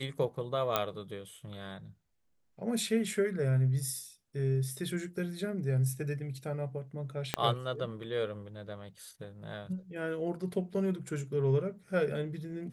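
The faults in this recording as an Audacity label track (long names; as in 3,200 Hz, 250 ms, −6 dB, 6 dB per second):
0.760000	0.760000	click −12 dBFS
7.340000	7.340000	click −12 dBFS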